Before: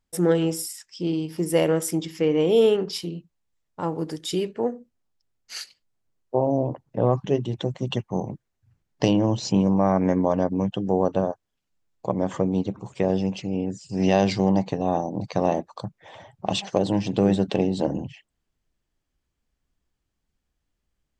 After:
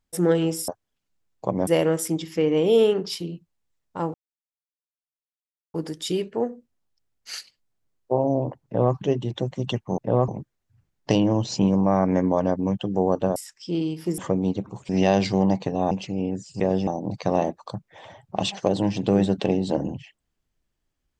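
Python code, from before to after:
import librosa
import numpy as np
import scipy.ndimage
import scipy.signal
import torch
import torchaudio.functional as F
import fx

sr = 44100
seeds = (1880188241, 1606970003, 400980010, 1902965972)

y = fx.edit(x, sr, fx.swap(start_s=0.68, length_s=0.82, other_s=11.29, other_length_s=0.99),
    fx.insert_silence(at_s=3.97, length_s=1.6),
    fx.duplicate(start_s=6.88, length_s=0.3, to_s=8.21),
    fx.swap(start_s=12.99, length_s=0.27, other_s=13.95, other_length_s=1.02), tone=tone)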